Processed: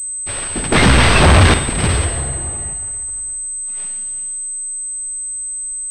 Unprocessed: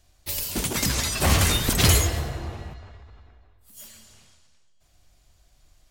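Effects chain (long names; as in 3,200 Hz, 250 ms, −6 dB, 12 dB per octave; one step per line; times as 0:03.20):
stylus tracing distortion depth 0.41 ms
in parallel at +2.5 dB: brickwall limiter −14 dBFS, peak gain reduction 7.5 dB
0:00.72–0:01.54: on the sum: leveller curve on the samples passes 5
on a send at −10 dB: convolution reverb, pre-delay 43 ms
on the sum: pitch vibrato 1.7 Hz 6 cents
switching amplifier with a slow clock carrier 8,200 Hz
level −2.5 dB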